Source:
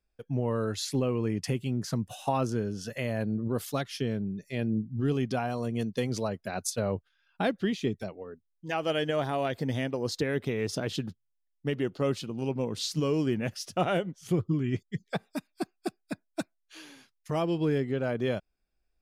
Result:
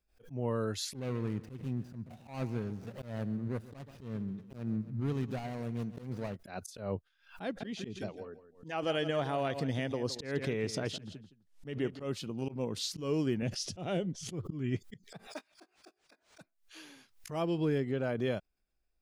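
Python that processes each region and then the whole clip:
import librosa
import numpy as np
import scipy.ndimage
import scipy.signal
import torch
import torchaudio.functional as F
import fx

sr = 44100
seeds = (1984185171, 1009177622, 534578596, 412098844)

y = fx.chain(x, sr, fx.median_filter(points=41),
    fx.peak_eq(hz=370.0, db=-4.5, octaves=1.3),
    fx.echo_feedback(ms=136, feedback_pct=51, wet_db=-17.0), at=(0.95, 6.36))
y = fx.chain(y, sr, fx.lowpass(hz=9900.0, slope=12),
    fx.echo_feedback(ms=165, feedback_pct=16, wet_db=-13.0), at=(7.44, 12.1))
y = fx.chain(y, sr, fx.lowpass(hz=6500.0, slope=12),
    fx.peak_eq(hz=1300.0, db=-11.5, octaves=2.1),
    fx.env_flatten(amount_pct=50), at=(13.42, 14.33))
y = fx.chain(y, sr, fx.highpass(hz=380.0, slope=24),
    fx.doubler(ms=19.0, db=-13.0),
    fx.resample_linear(factor=3), at=(15.27, 16.41))
y = fx.auto_swell(y, sr, attack_ms=154.0)
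y = fx.pre_swell(y, sr, db_per_s=140.0)
y = y * 10.0 ** (-3.5 / 20.0)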